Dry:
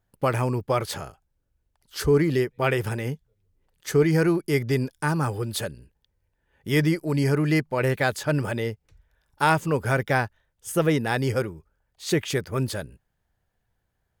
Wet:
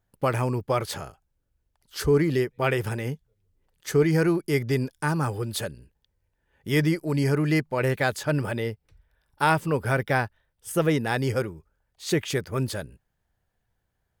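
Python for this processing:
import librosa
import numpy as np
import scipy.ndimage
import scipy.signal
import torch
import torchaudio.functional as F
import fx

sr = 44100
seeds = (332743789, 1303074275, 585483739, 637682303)

y = fx.peak_eq(x, sr, hz=6700.0, db=-10.0, octaves=0.22, at=(8.3, 10.71))
y = F.gain(torch.from_numpy(y), -1.0).numpy()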